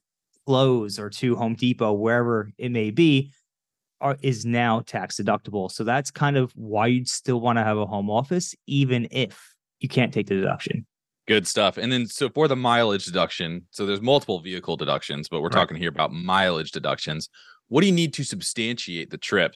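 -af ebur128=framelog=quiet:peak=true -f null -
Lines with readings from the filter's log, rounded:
Integrated loudness:
  I:         -23.6 LUFS
  Threshold: -33.8 LUFS
Loudness range:
  LRA:         2.2 LU
  Threshold: -43.9 LUFS
  LRA low:   -24.9 LUFS
  LRA high:  -22.7 LUFS
True peak:
  Peak:       -6.3 dBFS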